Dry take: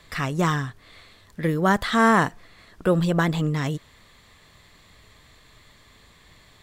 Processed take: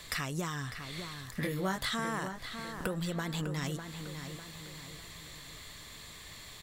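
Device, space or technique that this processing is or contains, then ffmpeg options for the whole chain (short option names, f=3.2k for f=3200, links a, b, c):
serial compression, leveller first: -filter_complex "[0:a]highshelf=f=3.3k:g=12,acompressor=threshold=-21dB:ratio=3,acompressor=threshold=-33dB:ratio=6,asettb=1/sr,asplit=3[a][b][c];[a]atrim=end=1.404[d];[b]atrim=start=1.4:end=1.89,asetpts=PTS-STARTPTS,afade=t=in:d=0.004:c=qsin,afade=t=out:st=0.486:d=0.004:c=qsin,asplit=2[e][f];[f]adelay=21,volume=-3dB[g];[e][g]amix=inputs=2:normalize=0,atrim=end_sample=21609[h];[c]atrim=start=1.886[i];[d][h]acrossfade=d=0.004:c1=hsin:c2=qsin[j];[j][i]acrossfade=d=0.004:c1=qsin:c2=hsin,asplit=2[k][l];[l]adelay=601,lowpass=f=4k:p=1,volume=-8dB,asplit=2[m][n];[n]adelay=601,lowpass=f=4k:p=1,volume=0.46,asplit=2[o][p];[p]adelay=601,lowpass=f=4k:p=1,volume=0.46,asplit=2[q][r];[r]adelay=601,lowpass=f=4k:p=1,volume=0.46,asplit=2[s][t];[t]adelay=601,lowpass=f=4k:p=1,volume=0.46[u];[k][m][o][q][s][u]amix=inputs=6:normalize=0"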